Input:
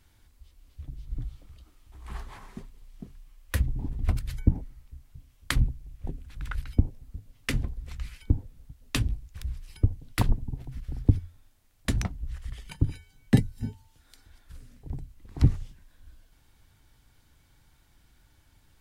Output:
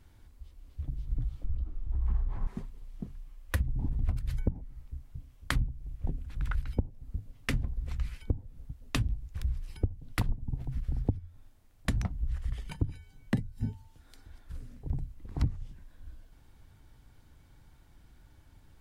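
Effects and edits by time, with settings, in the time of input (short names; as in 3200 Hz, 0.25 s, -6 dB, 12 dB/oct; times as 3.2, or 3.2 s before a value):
1.44–2.47 tilt -3.5 dB/oct
whole clip: tilt shelf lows +4.5 dB, about 1400 Hz; compressor 6:1, threshold -25 dBFS; dynamic EQ 370 Hz, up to -5 dB, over -48 dBFS, Q 1.2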